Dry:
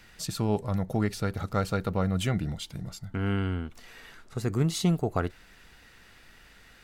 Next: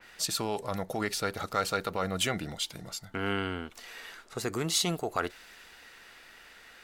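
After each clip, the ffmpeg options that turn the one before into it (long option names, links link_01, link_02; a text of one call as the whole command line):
ffmpeg -i in.wav -filter_complex "[0:a]bass=frequency=250:gain=-15,treble=frequency=4000:gain=-2,acrossover=split=960[link_01][link_02];[link_01]alimiter=level_in=3dB:limit=-24dB:level=0:latency=1,volume=-3dB[link_03];[link_03][link_02]amix=inputs=2:normalize=0,adynamicequalizer=threshold=0.00251:dfrequency=2900:dqfactor=0.7:tfrequency=2900:tqfactor=0.7:attack=5:release=100:ratio=0.375:range=2.5:mode=boostabove:tftype=highshelf,volume=3.5dB" out.wav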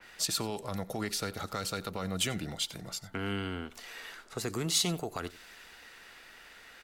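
ffmpeg -i in.wav -filter_complex "[0:a]acrossover=split=300|3000[link_01][link_02][link_03];[link_02]acompressor=threshold=-36dB:ratio=6[link_04];[link_01][link_04][link_03]amix=inputs=3:normalize=0,aecho=1:1:90:0.106" out.wav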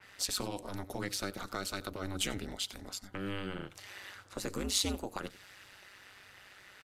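ffmpeg -i in.wav -af "aresample=32000,aresample=44100,aeval=exprs='val(0)*sin(2*PI*98*n/s)':channel_layout=same" out.wav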